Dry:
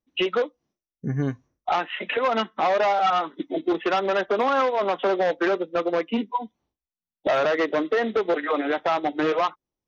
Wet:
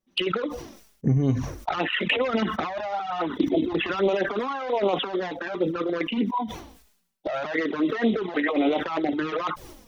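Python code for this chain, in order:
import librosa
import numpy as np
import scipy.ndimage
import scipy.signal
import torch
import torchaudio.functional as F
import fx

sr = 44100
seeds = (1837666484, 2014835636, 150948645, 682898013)

y = fx.peak_eq(x, sr, hz=75.0, db=14.0, octaves=1.1, at=(1.73, 4.09))
y = fx.over_compress(y, sr, threshold_db=-25.0, ratio=-0.5)
y = fx.env_flanger(y, sr, rest_ms=5.3, full_db=-21.0)
y = fx.sustainer(y, sr, db_per_s=74.0)
y = y * 10.0 ** (3.5 / 20.0)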